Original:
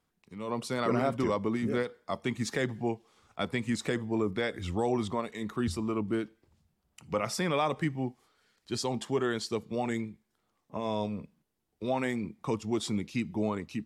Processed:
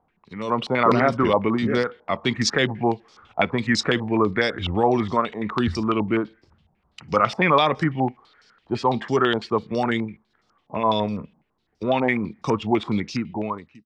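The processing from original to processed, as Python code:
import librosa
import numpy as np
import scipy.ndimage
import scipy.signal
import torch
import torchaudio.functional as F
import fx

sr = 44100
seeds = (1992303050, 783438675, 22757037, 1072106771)

y = fx.fade_out_tail(x, sr, length_s=0.92)
y = fx.filter_held_lowpass(y, sr, hz=12.0, low_hz=820.0, high_hz=5300.0)
y = y * librosa.db_to_amplitude(8.0)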